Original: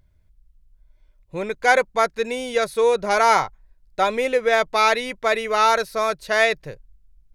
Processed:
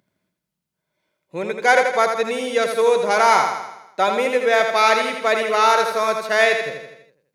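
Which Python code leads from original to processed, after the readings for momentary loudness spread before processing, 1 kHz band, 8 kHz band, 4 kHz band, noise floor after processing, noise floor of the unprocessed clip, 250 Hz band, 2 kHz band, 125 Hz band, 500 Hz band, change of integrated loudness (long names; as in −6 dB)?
11 LU, +2.5 dB, +2.5 dB, +2.0 dB, −81 dBFS, −59 dBFS, +1.5 dB, +2.5 dB, can't be measured, +2.5 dB, +2.5 dB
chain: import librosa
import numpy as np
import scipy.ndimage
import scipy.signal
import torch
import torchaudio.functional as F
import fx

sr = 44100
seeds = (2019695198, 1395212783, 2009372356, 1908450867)

y = scipy.signal.sosfilt(scipy.signal.butter(4, 170.0, 'highpass', fs=sr, output='sos'), x)
y = fx.echo_feedback(y, sr, ms=82, feedback_pct=54, wet_db=-6)
y = F.gain(torch.from_numpy(y), 1.0).numpy()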